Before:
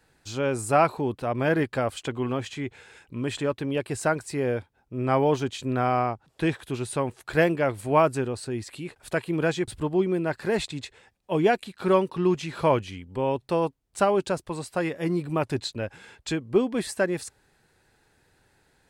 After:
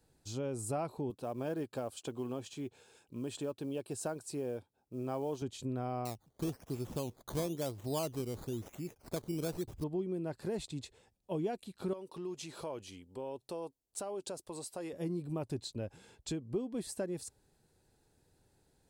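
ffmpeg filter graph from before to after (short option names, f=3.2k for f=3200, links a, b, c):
-filter_complex "[0:a]asettb=1/sr,asplit=3[a][b][c];[a]atrim=end=1.104[d];[b]atrim=start=1.1:end=5.42,asetpts=PTS-STARTPTS,afade=t=in:d=0.004:c=qsin,afade=t=out:st=4.316:d=0.004:c=qsin,highpass=f=260:p=1,bandreject=f=2k:w=6.8,acrusher=bits=8:mode=log:mix=0:aa=0.000001[e];[c]atrim=start=5.416[f];[d][e]acrossfade=d=0.004:c1=hsin:c2=qsin[g];[g][f]acrossfade=d=0.004:c1=qsin:c2=hsin,asettb=1/sr,asplit=3[h][i][j];[h]atrim=end=6.054[k];[i]atrim=start=6.05:end=9.84,asetpts=PTS-STARTPTS,afade=t=in:d=0.004:c=qsin,afade=t=out:st=3.786:d=0.004:c=qsin,lowpass=9.5k,acrusher=samples=13:mix=1:aa=0.000001:lfo=1:lforange=7.8:lforate=1[l];[j]atrim=start=9.836[m];[k][l]acrossfade=d=0.004:c1=hsin:c2=qsin[n];[n][m]acrossfade=d=0.004:c1=qsin:c2=hsin,asettb=1/sr,asplit=3[o][p][q];[o]atrim=end=11.934[r];[p]atrim=start=11.93:end=14.93,asetpts=PTS-STARTPTS,afade=t=in:d=0.004:c=qsin,afade=t=out:st=2.996:d=0.004:c=qsin,acompressor=threshold=-29dB:ratio=3:attack=3.2:release=140:knee=1:detection=peak,bass=f=250:g=-13,treble=f=4k:g=3[s];[q]atrim=start=14.926[t];[r][s]acrossfade=d=0.004:c1=hsin:c2=qsin[u];[u][t]acrossfade=d=0.004:c1=qsin:c2=hsin,equalizer=f=1.8k:w=0.7:g=-13.5,acompressor=threshold=-32dB:ratio=2.5,volume=-4dB"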